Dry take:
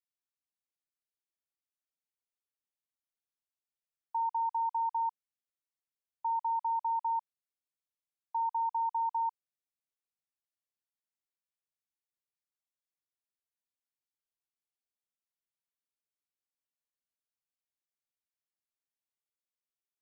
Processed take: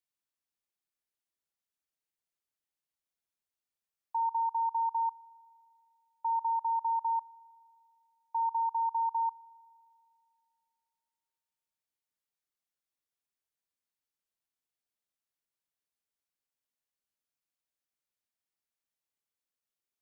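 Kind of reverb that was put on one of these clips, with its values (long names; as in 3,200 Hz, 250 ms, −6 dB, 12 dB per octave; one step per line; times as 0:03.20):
spring reverb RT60 2.5 s, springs 39 ms, chirp 65 ms, DRR 19.5 dB
level +1 dB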